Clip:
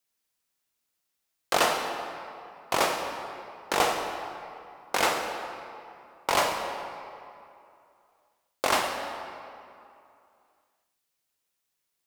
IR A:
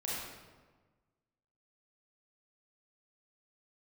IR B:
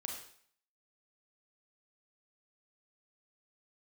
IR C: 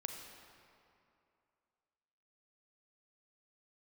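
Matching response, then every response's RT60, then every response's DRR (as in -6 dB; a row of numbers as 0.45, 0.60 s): C; 1.4, 0.55, 2.6 s; -7.0, 0.5, 3.5 dB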